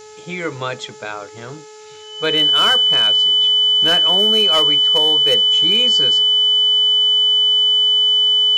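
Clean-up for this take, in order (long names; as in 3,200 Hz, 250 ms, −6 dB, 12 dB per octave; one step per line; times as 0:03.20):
clipped peaks rebuilt −8.5 dBFS
hum removal 428.4 Hz, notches 25
notch filter 3,000 Hz, Q 30
noise reduction from a noise print 26 dB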